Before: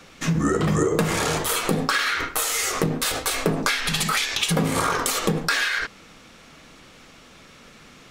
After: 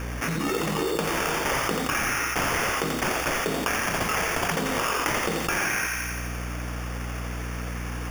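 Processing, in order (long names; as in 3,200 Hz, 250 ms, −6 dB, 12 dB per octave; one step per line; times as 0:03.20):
high-pass filter 250 Hz 12 dB per octave
high-shelf EQ 8,500 Hz +11.5 dB
decimation without filtering 11×
mains hum 60 Hz, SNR 18 dB
on a send: feedback echo with a high-pass in the loop 86 ms, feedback 62%, high-pass 790 Hz, level −6.5 dB
on the sum: envelope flattener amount 70%
level −8 dB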